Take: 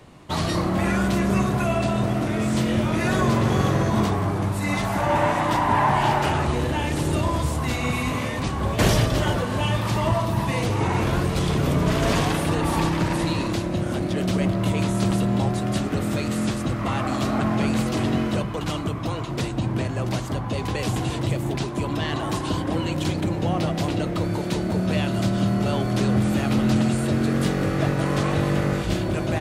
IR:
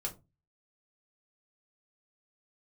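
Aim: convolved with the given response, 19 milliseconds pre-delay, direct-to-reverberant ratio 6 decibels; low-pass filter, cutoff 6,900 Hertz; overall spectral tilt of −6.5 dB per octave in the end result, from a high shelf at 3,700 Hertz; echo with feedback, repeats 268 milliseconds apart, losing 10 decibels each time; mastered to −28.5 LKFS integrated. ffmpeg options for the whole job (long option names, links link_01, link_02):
-filter_complex "[0:a]lowpass=6900,highshelf=frequency=3700:gain=-6.5,aecho=1:1:268|536|804|1072:0.316|0.101|0.0324|0.0104,asplit=2[link_01][link_02];[1:a]atrim=start_sample=2205,adelay=19[link_03];[link_02][link_03]afir=irnorm=-1:irlink=0,volume=-7dB[link_04];[link_01][link_04]amix=inputs=2:normalize=0,volume=-6.5dB"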